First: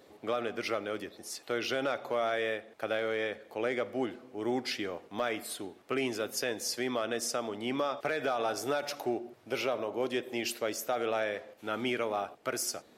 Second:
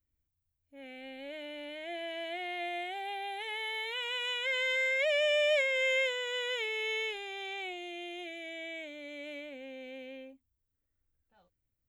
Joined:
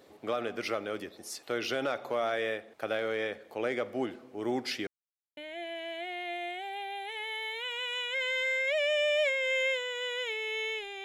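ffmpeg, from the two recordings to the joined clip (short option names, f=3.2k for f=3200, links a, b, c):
-filter_complex "[0:a]apad=whole_dur=11.04,atrim=end=11.04,asplit=2[a][b];[a]atrim=end=4.87,asetpts=PTS-STARTPTS,afade=t=out:st=4.866:d=0.004:c=hsin[c];[b]atrim=start=4.87:end=5.37,asetpts=PTS-STARTPTS,volume=0[d];[1:a]atrim=start=1.69:end=7.36,asetpts=PTS-STARTPTS,afade=t=in:d=0.004:c=hsin[e];[c][d][e]concat=n=3:v=0:a=1"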